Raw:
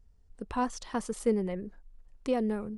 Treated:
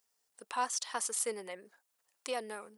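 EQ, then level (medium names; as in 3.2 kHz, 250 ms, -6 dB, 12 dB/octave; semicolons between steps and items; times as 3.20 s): high-pass 770 Hz 12 dB/octave; treble shelf 4.1 kHz +10 dB; treble shelf 10 kHz +7 dB; 0.0 dB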